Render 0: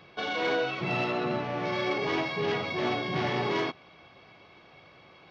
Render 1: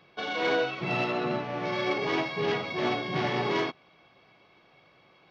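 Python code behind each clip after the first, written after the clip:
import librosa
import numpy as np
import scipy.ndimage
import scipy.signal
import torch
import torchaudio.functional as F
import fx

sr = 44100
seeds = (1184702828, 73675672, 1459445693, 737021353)

y = fx.peak_eq(x, sr, hz=82.0, db=-13.0, octaves=0.32)
y = fx.upward_expand(y, sr, threshold_db=-41.0, expansion=1.5)
y = F.gain(torch.from_numpy(y), 2.0).numpy()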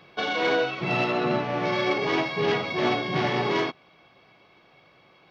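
y = fx.rider(x, sr, range_db=10, speed_s=0.5)
y = F.gain(torch.from_numpy(y), 4.0).numpy()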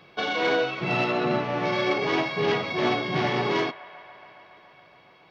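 y = fx.echo_wet_bandpass(x, sr, ms=140, feedback_pct=82, hz=1300.0, wet_db=-18.0)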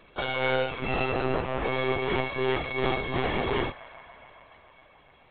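y = fx.lpc_monotone(x, sr, seeds[0], pitch_hz=130.0, order=16)
y = F.gain(torch.from_numpy(y), -2.5).numpy()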